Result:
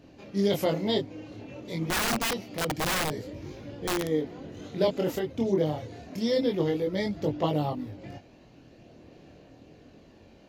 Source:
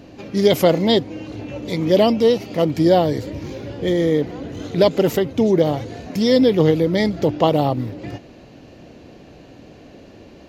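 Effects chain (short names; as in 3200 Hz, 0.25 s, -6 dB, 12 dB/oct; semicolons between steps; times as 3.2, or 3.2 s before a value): chorus voices 2, 0.27 Hz, delay 23 ms, depth 3.7 ms; 1.9–4.09 wrapped overs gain 15 dB; gain -7.5 dB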